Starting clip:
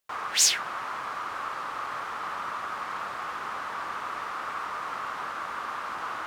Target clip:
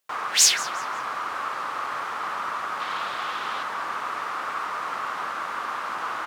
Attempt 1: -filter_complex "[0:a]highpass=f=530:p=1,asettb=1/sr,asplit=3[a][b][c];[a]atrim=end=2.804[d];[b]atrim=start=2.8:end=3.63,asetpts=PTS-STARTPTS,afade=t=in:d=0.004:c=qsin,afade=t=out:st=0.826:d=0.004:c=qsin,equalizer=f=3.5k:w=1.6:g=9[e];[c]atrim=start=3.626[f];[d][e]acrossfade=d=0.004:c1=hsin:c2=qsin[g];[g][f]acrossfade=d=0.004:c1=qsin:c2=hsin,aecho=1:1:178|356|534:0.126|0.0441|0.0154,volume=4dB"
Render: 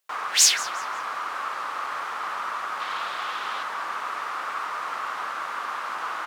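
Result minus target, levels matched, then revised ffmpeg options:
125 Hz band -7.5 dB
-filter_complex "[0:a]highpass=f=160:p=1,asettb=1/sr,asplit=3[a][b][c];[a]atrim=end=2.804[d];[b]atrim=start=2.8:end=3.63,asetpts=PTS-STARTPTS,afade=t=in:d=0.004:c=qsin,afade=t=out:st=0.826:d=0.004:c=qsin,equalizer=f=3.5k:w=1.6:g=9[e];[c]atrim=start=3.626[f];[d][e]acrossfade=d=0.004:c1=hsin:c2=qsin[g];[g][f]acrossfade=d=0.004:c1=qsin:c2=hsin,aecho=1:1:178|356|534:0.126|0.0441|0.0154,volume=4dB"

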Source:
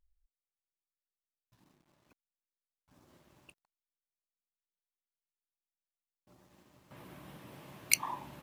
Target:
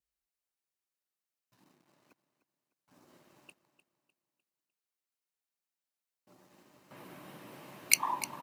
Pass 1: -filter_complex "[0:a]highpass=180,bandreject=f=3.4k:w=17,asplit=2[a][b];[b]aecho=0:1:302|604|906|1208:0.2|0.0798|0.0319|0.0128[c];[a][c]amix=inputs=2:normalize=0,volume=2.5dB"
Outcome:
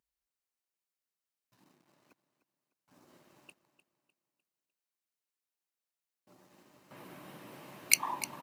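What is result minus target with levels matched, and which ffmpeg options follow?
1000 Hz band -3.0 dB
-filter_complex "[0:a]highpass=180,adynamicequalizer=threshold=0.002:dfrequency=990:dqfactor=3.4:tfrequency=990:tqfactor=3.4:attack=5:release=100:ratio=0.4:range=2:mode=boostabove:tftype=bell,bandreject=f=3.4k:w=17,asplit=2[a][b];[b]aecho=0:1:302|604|906|1208:0.2|0.0798|0.0319|0.0128[c];[a][c]amix=inputs=2:normalize=0,volume=2.5dB"

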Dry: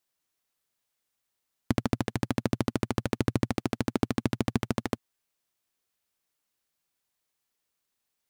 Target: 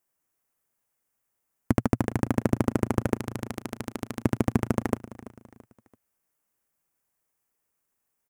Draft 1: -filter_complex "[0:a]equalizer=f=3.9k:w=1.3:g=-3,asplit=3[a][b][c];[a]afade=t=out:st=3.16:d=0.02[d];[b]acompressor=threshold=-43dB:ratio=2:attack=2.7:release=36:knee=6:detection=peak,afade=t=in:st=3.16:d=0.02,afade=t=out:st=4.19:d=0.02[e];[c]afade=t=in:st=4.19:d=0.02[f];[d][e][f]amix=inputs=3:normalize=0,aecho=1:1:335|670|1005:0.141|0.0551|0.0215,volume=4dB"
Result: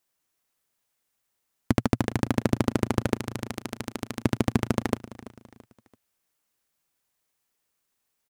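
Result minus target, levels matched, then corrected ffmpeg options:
4000 Hz band +7.0 dB
-filter_complex "[0:a]equalizer=f=3.9k:w=1.3:g=-14.5,asplit=3[a][b][c];[a]afade=t=out:st=3.16:d=0.02[d];[b]acompressor=threshold=-43dB:ratio=2:attack=2.7:release=36:knee=6:detection=peak,afade=t=in:st=3.16:d=0.02,afade=t=out:st=4.19:d=0.02[e];[c]afade=t=in:st=4.19:d=0.02[f];[d][e][f]amix=inputs=3:normalize=0,aecho=1:1:335|670|1005:0.141|0.0551|0.0215,volume=4dB"

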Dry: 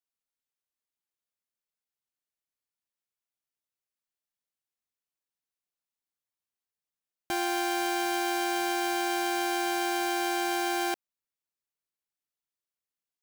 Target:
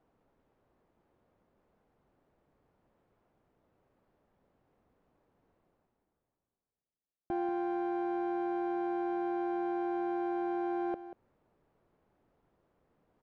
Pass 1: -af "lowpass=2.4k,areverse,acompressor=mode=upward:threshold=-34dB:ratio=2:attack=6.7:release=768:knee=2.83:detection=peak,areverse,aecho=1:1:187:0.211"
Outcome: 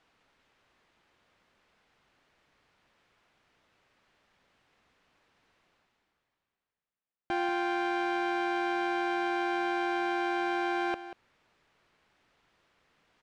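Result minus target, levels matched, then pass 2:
2000 Hz band +11.5 dB
-af "lowpass=650,areverse,acompressor=mode=upward:threshold=-34dB:ratio=2:attack=6.7:release=768:knee=2.83:detection=peak,areverse,aecho=1:1:187:0.211"

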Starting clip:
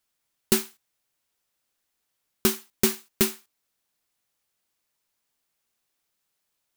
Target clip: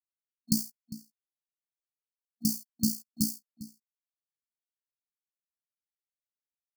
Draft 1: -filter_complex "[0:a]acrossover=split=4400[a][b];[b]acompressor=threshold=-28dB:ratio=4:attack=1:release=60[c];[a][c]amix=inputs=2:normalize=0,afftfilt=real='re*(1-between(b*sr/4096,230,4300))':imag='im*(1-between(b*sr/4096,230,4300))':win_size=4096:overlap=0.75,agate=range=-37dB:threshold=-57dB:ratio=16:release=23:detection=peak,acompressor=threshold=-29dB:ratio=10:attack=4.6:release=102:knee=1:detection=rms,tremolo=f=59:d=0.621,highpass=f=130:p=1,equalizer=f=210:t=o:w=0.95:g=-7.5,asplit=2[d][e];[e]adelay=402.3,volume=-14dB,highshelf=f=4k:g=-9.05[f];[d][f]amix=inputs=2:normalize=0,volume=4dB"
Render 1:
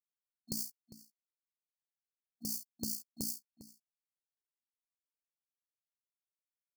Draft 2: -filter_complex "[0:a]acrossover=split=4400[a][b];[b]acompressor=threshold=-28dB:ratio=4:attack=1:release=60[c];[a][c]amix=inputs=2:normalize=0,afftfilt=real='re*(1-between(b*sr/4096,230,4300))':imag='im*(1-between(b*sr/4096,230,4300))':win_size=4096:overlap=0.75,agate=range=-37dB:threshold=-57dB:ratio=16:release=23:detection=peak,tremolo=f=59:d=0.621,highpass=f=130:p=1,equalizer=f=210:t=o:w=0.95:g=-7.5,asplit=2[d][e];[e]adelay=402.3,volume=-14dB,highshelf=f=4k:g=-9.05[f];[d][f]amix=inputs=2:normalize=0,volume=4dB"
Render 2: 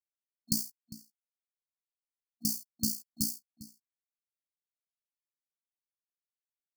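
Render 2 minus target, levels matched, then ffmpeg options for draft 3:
250 Hz band -5.0 dB
-filter_complex "[0:a]acrossover=split=4400[a][b];[b]acompressor=threshold=-28dB:ratio=4:attack=1:release=60[c];[a][c]amix=inputs=2:normalize=0,afftfilt=real='re*(1-between(b*sr/4096,230,4300))':imag='im*(1-between(b*sr/4096,230,4300))':win_size=4096:overlap=0.75,agate=range=-37dB:threshold=-57dB:ratio=16:release=23:detection=peak,tremolo=f=59:d=0.621,highpass=f=130:p=1,asplit=2[d][e];[e]adelay=402.3,volume=-14dB,highshelf=f=4k:g=-9.05[f];[d][f]amix=inputs=2:normalize=0,volume=4dB"

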